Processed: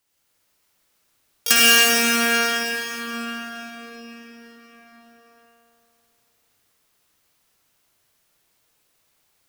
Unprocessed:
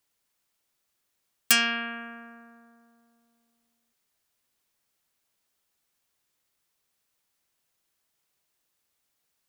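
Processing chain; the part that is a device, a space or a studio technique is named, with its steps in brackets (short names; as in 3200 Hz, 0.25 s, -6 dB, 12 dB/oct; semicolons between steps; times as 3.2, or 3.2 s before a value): shimmer-style reverb (harmoniser +12 st -7 dB; reverb RT60 5.8 s, pre-delay 48 ms, DRR -8.5 dB); gain +2.5 dB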